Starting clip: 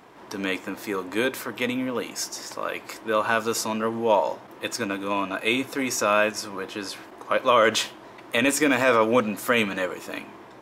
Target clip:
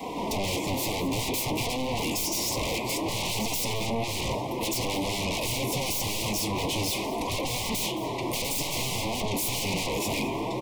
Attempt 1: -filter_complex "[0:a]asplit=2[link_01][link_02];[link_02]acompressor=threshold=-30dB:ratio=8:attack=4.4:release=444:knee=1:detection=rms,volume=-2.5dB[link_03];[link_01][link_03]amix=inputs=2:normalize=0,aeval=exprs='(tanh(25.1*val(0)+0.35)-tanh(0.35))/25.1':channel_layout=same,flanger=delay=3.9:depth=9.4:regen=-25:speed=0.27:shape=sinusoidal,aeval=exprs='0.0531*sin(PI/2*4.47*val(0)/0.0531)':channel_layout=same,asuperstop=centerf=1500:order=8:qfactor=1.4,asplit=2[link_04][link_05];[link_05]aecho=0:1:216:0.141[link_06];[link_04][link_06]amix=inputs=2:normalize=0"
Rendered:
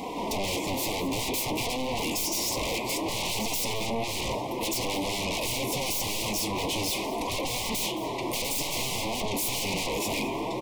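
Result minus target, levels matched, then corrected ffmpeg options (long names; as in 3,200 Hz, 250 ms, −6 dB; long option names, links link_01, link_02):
125 Hz band −4.0 dB
-filter_complex "[0:a]asplit=2[link_01][link_02];[link_02]acompressor=threshold=-30dB:ratio=8:attack=4.4:release=444:knee=1:detection=rms,volume=-2.5dB[link_03];[link_01][link_03]amix=inputs=2:normalize=0,aeval=exprs='(tanh(25.1*val(0)+0.35)-tanh(0.35))/25.1':channel_layout=same,flanger=delay=3.9:depth=9.4:regen=-25:speed=0.27:shape=sinusoidal,aeval=exprs='0.0531*sin(PI/2*4.47*val(0)/0.0531)':channel_layout=same,asuperstop=centerf=1500:order=8:qfactor=1.4,adynamicequalizer=threshold=0.00316:dfrequency=110:dqfactor=0.84:tfrequency=110:tqfactor=0.84:attack=5:release=100:ratio=0.438:range=2.5:mode=boostabove:tftype=bell,asplit=2[link_04][link_05];[link_05]aecho=0:1:216:0.141[link_06];[link_04][link_06]amix=inputs=2:normalize=0"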